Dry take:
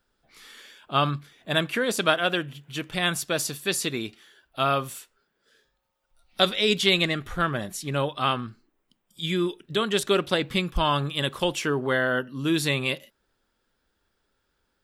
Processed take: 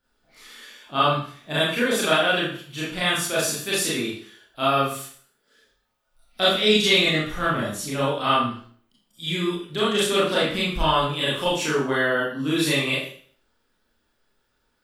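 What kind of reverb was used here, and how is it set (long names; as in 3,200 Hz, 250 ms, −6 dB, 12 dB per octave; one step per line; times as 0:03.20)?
four-comb reverb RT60 0.5 s, combs from 26 ms, DRR −8.5 dB
level −5.5 dB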